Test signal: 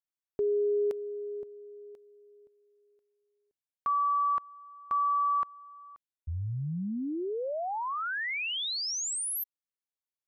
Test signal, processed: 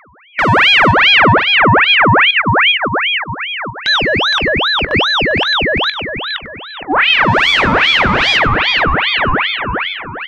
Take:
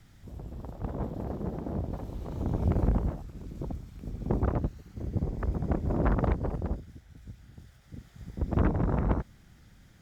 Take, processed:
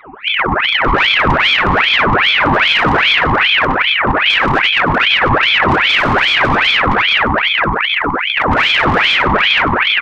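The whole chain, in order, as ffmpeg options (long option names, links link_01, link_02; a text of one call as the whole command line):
ffmpeg -i in.wav -filter_complex "[0:a]afftdn=noise_reduction=17:noise_floor=-51,afftfilt=real='re*between(b*sr/4096,230,2300)':imag='im*between(b*sr/4096,230,2300)':win_size=4096:overlap=0.75,lowshelf=frequency=780:width_type=q:width=3:gain=13,asplit=2[link_01][link_02];[link_02]adelay=465,lowpass=frequency=1500:poles=1,volume=-6dB,asplit=2[link_03][link_04];[link_04]adelay=465,lowpass=frequency=1500:poles=1,volume=0.48,asplit=2[link_05][link_06];[link_06]adelay=465,lowpass=frequency=1500:poles=1,volume=0.48,asplit=2[link_07][link_08];[link_08]adelay=465,lowpass=frequency=1500:poles=1,volume=0.48,asplit=2[link_09][link_10];[link_10]adelay=465,lowpass=frequency=1500:poles=1,volume=0.48,asplit=2[link_11][link_12];[link_12]adelay=465,lowpass=frequency=1500:poles=1,volume=0.48[link_13];[link_03][link_05][link_07][link_09][link_11][link_13]amix=inputs=6:normalize=0[link_14];[link_01][link_14]amix=inputs=2:normalize=0,asplit=2[link_15][link_16];[link_16]highpass=frequency=720:poles=1,volume=36dB,asoftclip=type=tanh:threshold=0dB[link_17];[link_15][link_17]amix=inputs=2:normalize=0,lowpass=frequency=1400:poles=1,volume=-6dB,acompressor=threshold=-14dB:ratio=16:attack=0.13:release=170:knee=1:detection=peak,aeval=exprs='val(0)+0.00447*sin(2*PI*450*n/s)':channel_layout=same,asplit=2[link_18][link_19];[link_19]adelay=20,volume=-13dB[link_20];[link_18][link_20]amix=inputs=2:normalize=0,asplit=2[link_21][link_22];[link_22]aecho=0:1:97|194|291|388:0.335|0.124|0.0459|0.017[link_23];[link_21][link_23]amix=inputs=2:normalize=0,aeval=exprs='val(0)*sin(2*PI*1700*n/s+1700*0.7/2.5*sin(2*PI*2.5*n/s))':channel_layout=same,volume=7dB" out.wav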